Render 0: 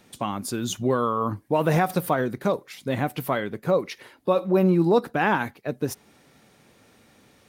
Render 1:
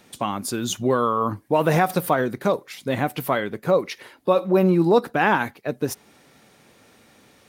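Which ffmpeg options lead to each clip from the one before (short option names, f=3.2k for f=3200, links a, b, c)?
-af "lowshelf=f=220:g=-4.5,volume=3.5dB"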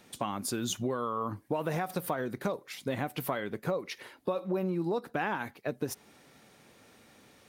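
-af "acompressor=threshold=-24dB:ratio=6,volume=-4.5dB"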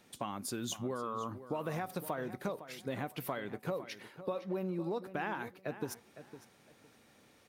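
-filter_complex "[0:a]asplit=2[a][b];[b]adelay=508,lowpass=f=4.9k:p=1,volume=-13dB,asplit=2[c][d];[d]adelay=508,lowpass=f=4.9k:p=1,volume=0.23,asplit=2[e][f];[f]adelay=508,lowpass=f=4.9k:p=1,volume=0.23[g];[a][c][e][g]amix=inputs=4:normalize=0,volume=-5.5dB"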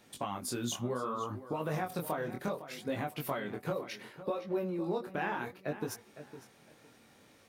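-af "flanger=delay=18.5:depth=7:speed=0.67,volume=5.5dB"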